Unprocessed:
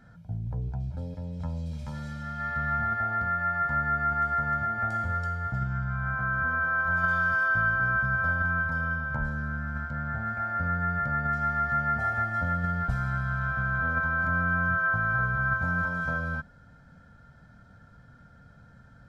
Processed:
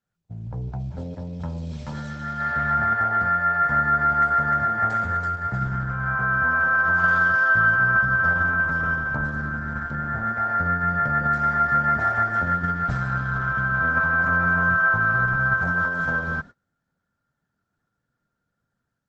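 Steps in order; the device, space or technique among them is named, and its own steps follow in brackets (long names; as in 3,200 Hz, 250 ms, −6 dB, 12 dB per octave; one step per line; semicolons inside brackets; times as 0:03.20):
video call (high-pass filter 150 Hz 6 dB per octave; automatic gain control gain up to 7.5 dB; noise gate −38 dBFS, range −29 dB; Opus 12 kbit/s 48,000 Hz)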